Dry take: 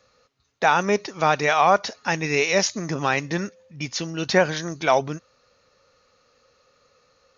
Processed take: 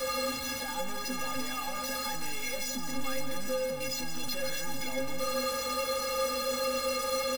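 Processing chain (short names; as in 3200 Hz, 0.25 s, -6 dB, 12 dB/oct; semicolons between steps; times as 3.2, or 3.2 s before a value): infinite clipping; on a send: echo 0.165 s -9 dB; on the sum: hum 50 Hz, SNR 13 dB; metallic resonator 250 Hz, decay 0.3 s, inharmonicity 0.03; gain +3.5 dB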